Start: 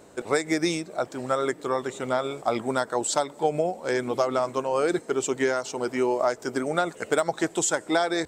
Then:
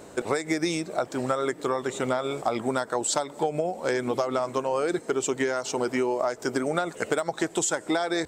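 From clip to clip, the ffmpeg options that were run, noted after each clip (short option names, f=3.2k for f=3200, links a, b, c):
-af "acompressor=threshold=-28dB:ratio=6,volume=5.5dB"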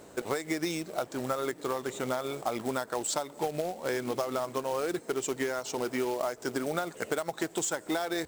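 -af "acrusher=bits=3:mode=log:mix=0:aa=0.000001,volume=-5.5dB"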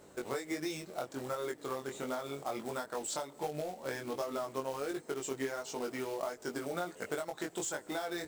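-af "flanger=delay=20:depth=2.6:speed=1.4,volume=-3dB"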